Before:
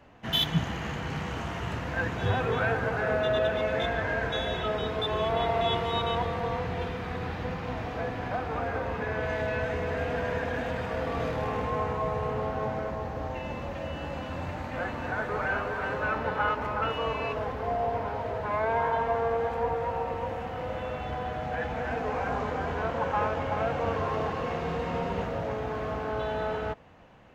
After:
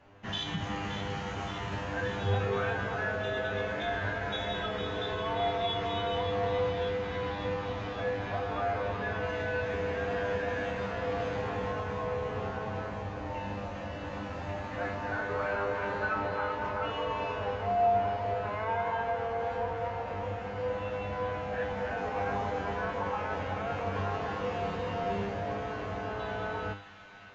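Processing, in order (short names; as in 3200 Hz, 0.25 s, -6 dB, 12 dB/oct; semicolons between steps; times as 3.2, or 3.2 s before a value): limiter -21 dBFS, peak gain reduction 6.5 dB; resonator 100 Hz, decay 0.43 s, harmonics all, mix 90%; thin delay 0.574 s, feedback 74%, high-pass 1800 Hz, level -10 dB; gain +8 dB; Vorbis 96 kbps 16000 Hz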